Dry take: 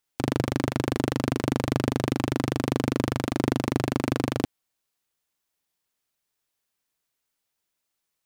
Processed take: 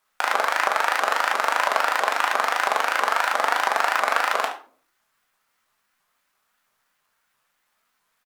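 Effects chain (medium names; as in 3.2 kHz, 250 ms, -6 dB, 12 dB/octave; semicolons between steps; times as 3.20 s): high-pass 620 Hz 24 dB/octave; treble shelf 6.5 kHz +5 dB; word length cut 12-bit, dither none; peaking EQ 1.3 kHz +15 dB 1.9 oct; on a send: delay 70 ms -15 dB; on the sum: simulated room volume 370 m³, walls furnished, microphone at 1.7 m; vibrato with a chosen wave saw up 3 Hz, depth 250 cents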